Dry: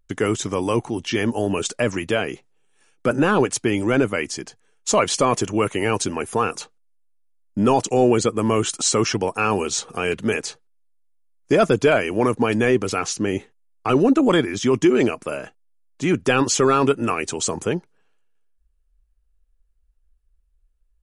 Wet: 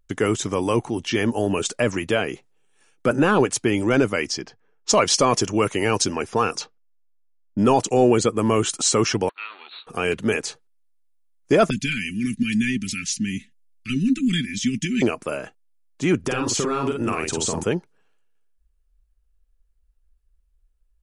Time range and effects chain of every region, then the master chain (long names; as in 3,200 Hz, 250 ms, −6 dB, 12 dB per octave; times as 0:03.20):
0:03.89–0:07.64: low-pass that shuts in the quiet parts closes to 1,200 Hz, open at −18.5 dBFS + parametric band 5,300 Hz +8.5 dB 0.5 octaves
0:09.29–0:09.87: lower of the sound and its delayed copy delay 0.8 ms + linear-phase brick-wall band-pass 220–4,500 Hz + first difference
0:11.70–0:15.02: inverse Chebyshev band-stop filter 500–1,000 Hz, stop band 60 dB + comb filter 4.6 ms, depth 53%
0:16.19–0:17.64: downward compressor 12 to 1, threshold −20 dBFS + low-shelf EQ 150 Hz +4.5 dB + double-tracking delay 49 ms −3.5 dB
whole clip: no processing